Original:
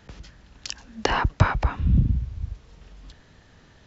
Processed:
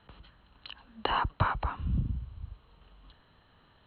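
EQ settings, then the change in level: rippled Chebyshev low-pass 4200 Hz, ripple 9 dB; -2.0 dB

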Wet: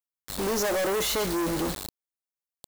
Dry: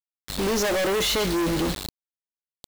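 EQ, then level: low shelf 450 Hz -8.5 dB; bell 3100 Hz -8.5 dB 2.1 oct; +2.0 dB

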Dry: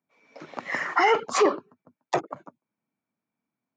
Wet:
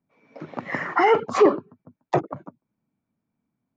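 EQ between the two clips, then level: RIAA curve playback; +1.5 dB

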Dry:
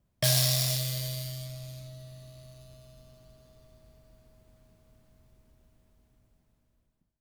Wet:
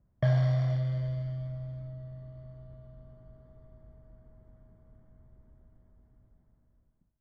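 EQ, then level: polynomial smoothing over 41 samples; air absorption 200 m; low shelf 220 Hz +5.5 dB; 0.0 dB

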